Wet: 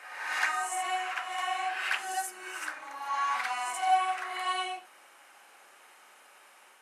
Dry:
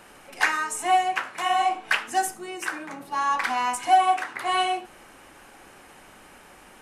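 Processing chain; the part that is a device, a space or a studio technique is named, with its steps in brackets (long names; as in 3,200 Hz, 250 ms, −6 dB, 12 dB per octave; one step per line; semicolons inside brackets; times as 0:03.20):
ghost voice (reversed playback; convolution reverb RT60 1.3 s, pre-delay 38 ms, DRR −0.5 dB; reversed playback; high-pass filter 720 Hz 12 dB per octave)
level −8 dB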